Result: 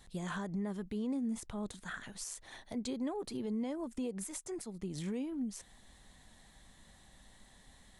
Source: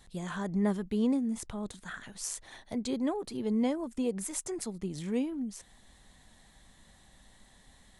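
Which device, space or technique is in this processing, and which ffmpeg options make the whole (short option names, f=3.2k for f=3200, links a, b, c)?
stacked limiters: -af "alimiter=limit=-23.5dB:level=0:latency=1:release=349,alimiter=level_in=5dB:limit=-24dB:level=0:latency=1:release=126,volume=-5dB,volume=-1dB"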